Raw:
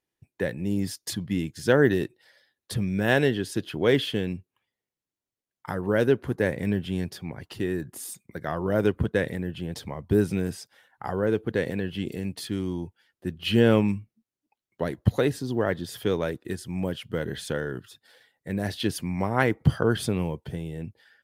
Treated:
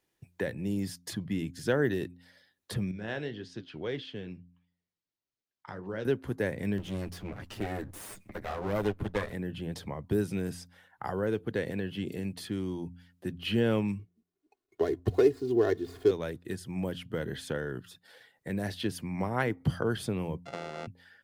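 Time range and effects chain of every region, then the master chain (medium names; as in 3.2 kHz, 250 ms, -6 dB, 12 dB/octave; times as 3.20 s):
2.91–6.05 s: flange 1.7 Hz, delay 5.4 ms, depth 8 ms, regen -63% + four-pole ladder low-pass 6.5 kHz, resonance 30%
6.78–9.33 s: comb filter that takes the minimum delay 9.7 ms + upward compressor, threshold -37 dBFS
13.99–16.11 s: median filter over 15 samples + peaking EQ 410 Hz +12 dB 0.56 oct + comb 2.8 ms, depth 70%
20.45–20.87 s: sorted samples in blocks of 64 samples + high-pass 280 Hz + distance through air 100 m
whole clip: de-hum 87.87 Hz, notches 3; three bands compressed up and down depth 40%; trim -5.5 dB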